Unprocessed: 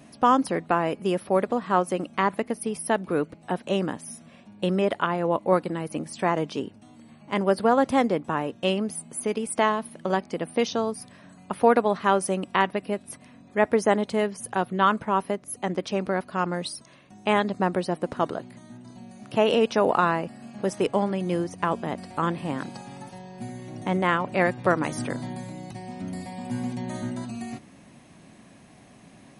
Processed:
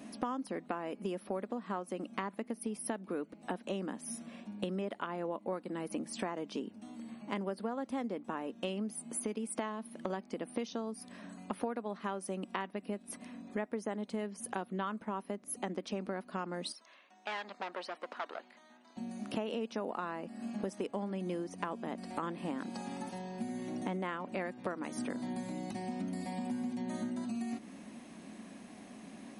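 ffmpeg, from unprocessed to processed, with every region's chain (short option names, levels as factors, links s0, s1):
-filter_complex "[0:a]asettb=1/sr,asplit=3[s0][s1][s2];[s0]atrim=end=16.724[s3];[s1]atrim=start=16.72:end=18.97,asetpts=PTS-STARTPTS,afade=t=in:d=0.004:c=qsin,afade=t=out:st=2.246:d=0.004:c=qsin,aeval=exprs='(tanh(15.8*val(0)+0.6)-tanh(0.6))/15.8':c=same,highpass=800,lowpass=4400[s4];[s2]atrim=start=18.966[s5];[s3][s4]acrossfade=d=0.004:c1=hsin:c2=qsin[s6];[s6][s5]acrossfade=d=0.004:c1=qsin:c2=hsin,lowshelf=f=170:t=q:w=3:g=-7,acompressor=threshold=0.02:ratio=6,volume=0.891"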